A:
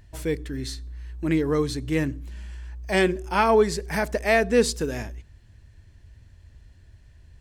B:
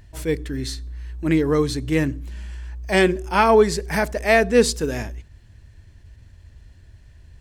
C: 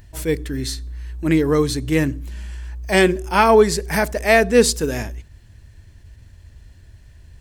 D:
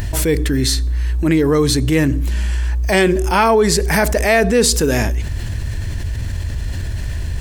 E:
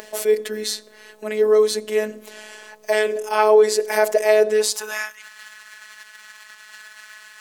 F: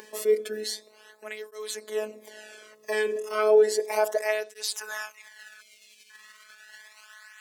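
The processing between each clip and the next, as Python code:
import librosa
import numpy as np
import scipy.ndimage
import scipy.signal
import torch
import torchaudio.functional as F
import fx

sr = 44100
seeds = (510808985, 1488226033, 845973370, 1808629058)

y1 = fx.attack_slew(x, sr, db_per_s=250.0)
y1 = F.gain(torch.from_numpy(y1), 4.0).numpy()
y2 = fx.high_shelf(y1, sr, hz=9200.0, db=8.0)
y2 = F.gain(torch.from_numpy(y2), 2.0).numpy()
y3 = fx.env_flatten(y2, sr, amount_pct=70)
y3 = F.gain(torch.from_numpy(y3), -2.5).numpy()
y4 = fx.filter_sweep_highpass(y3, sr, from_hz=490.0, to_hz=1300.0, start_s=4.5, end_s=5.02, q=3.1)
y4 = fx.robotise(y4, sr, hz=214.0)
y4 = F.gain(torch.from_numpy(y4), -5.0).numpy()
y5 = fx.spec_box(y4, sr, start_s=5.61, length_s=0.49, low_hz=660.0, high_hz=2000.0, gain_db=-26)
y5 = fx.flanger_cancel(y5, sr, hz=0.33, depth_ms=1.5)
y5 = F.gain(torch.from_numpy(y5), -4.5).numpy()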